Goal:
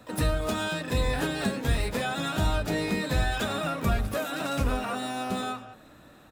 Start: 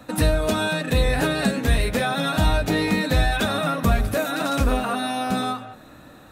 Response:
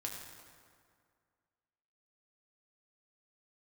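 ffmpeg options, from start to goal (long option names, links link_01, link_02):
-filter_complex "[0:a]bandreject=frequency=264.8:width_type=h:width=4,bandreject=frequency=529.6:width_type=h:width=4,bandreject=frequency=794.4:width_type=h:width=4,asplit=3[link_01][link_02][link_03];[link_02]asetrate=22050,aresample=44100,atempo=2,volume=-16dB[link_04];[link_03]asetrate=88200,aresample=44100,atempo=0.5,volume=-10dB[link_05];[link_01][link_04][link_05]amix=inputs=3:normalize=0,volume=-7dB"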